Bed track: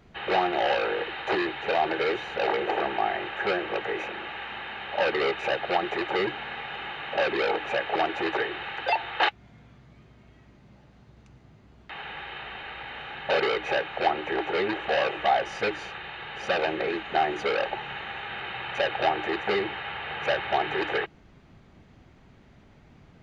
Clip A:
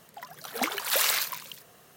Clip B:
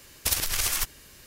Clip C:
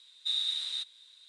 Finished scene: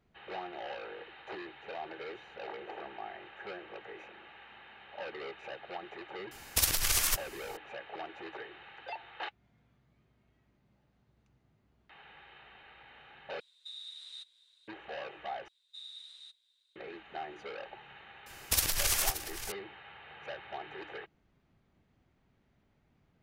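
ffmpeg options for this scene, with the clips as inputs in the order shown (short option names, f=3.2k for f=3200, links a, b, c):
-filter_complex "[2:a]asplit=2[a][b];[3:a]asplit=2[c][d];[0:a]volume=-17dB[e];[c]alimiter=level_in=3.5dB:limit=-24dB:level=0:latency=1:release=475,volume=-3.5dB[f];[b]aecho=1:1:577:0.237[g];[e]asplit=3[h][i][j];[h]atrim=end=13.404[k];[f]atrim=end=1.28,asetpts=PTS-STARTPTS,volume=-9.5dB[l];[i]atrim=start=14.676:end=15.484[m];[d]atrim=end=1.28,asetpts=PTS-STARTPTS,volume=-17dB[n];[j]atrim=start=16.756[o];[a]atrim=end=1.26,asetpts=PTS-STARTPTS,volume=-2dB,afade=t=in:d=0.004:c=hsin,afade=t=out:st=1.256:d=0.004:c=hsin,adelay=6310[p];[g]atrim=end=1.26,asetpts=PTS-STARTPTS,volume=-3dB,afade=t=in:d=0.004:c=hsin,afade=t=out:st=1.256:d=0.004:c=hsin,adelay=18260[q];[k][l]acrossfade=d=0.004:c1=hsin:c2=hsin[r];[r][m]acrossfade=d=0.004:c1=hsin:c2=hsin[s];[s][n]acrossfade=d=0.004:c1=hsin:c2=hsin[t];[t][o]acrossfade=d=0.004:c1=hsin:c2=hsin[u];[u][p][q]amix=inputs=3:normalize=0"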